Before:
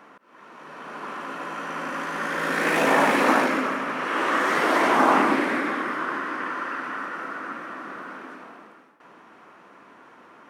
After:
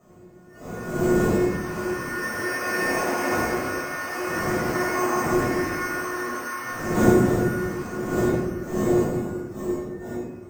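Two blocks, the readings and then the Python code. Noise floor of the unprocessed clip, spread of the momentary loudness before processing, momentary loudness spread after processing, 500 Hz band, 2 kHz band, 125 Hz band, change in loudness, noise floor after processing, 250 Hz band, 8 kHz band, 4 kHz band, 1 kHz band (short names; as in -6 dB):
-51 dBFS, 18 LU, 10 LU, +3.5 dB, -2.5 dB, +15.0 dB, -1.0 dB, -46 dBFS, +4.5 dB, +6.0 dB, -4.0 dB, -5.0 dB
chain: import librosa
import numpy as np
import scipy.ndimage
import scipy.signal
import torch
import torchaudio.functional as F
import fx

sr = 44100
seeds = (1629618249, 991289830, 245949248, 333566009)

p1 = fx.cvsd(x, sr, bps=16000)
p2 = fx.dmg_wind(p1, sr, seeds[0], corner_hz=320.0, level_db=-22.0)
p3 = fx.comb_fb(p2, sr, f0_hz=360.0, decay_s=0.49, harmonics='all', damping=0.0, mix_pct=90)
p4 = np.repeat(p3[::6], 6)[:len(p3)]
p5 = fx.rider(p4, sr, range_db=4, speed_s=2.0)
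p6 = p5 + fx.echo_diffused(p5, sr, ms=935, feedback_pct=55, wet_db=-13.0, dry=0)
p7 = fx.noise_reduce_blind(p6, sr, reduce_db=13)
p8 = fx.highpass(p7, sr, hz=200.0, slope=6)
p9 = fx.room_shoebox(p8, sr, seeds[1], volume_m3=640.0, walls='mixed', distance_m=6.2)
y = p9 * librosa.db_to_amplitude(-1.0)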